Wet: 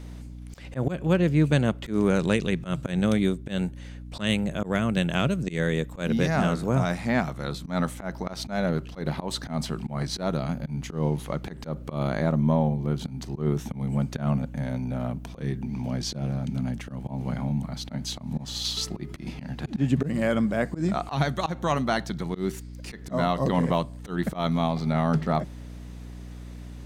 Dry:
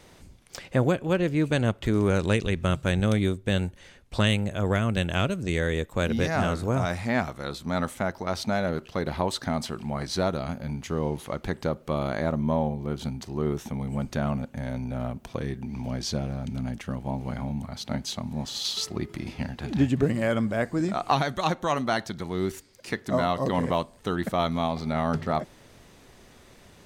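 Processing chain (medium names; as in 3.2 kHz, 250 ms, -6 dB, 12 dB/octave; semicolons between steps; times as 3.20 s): resonant low shelf 110 Hz -9 dB, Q 3; hum 60 Hz, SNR 14 dB; slow attack 124 ms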